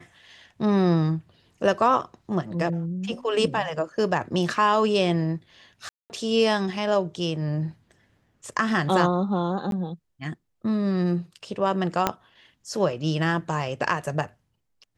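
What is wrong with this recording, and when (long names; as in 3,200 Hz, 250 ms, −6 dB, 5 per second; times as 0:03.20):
0:05.89–0:06.10: drop-out 209 ms
0:09.71–0:09.72: drop-out 12 ms
0:12.07: click −6 dBFS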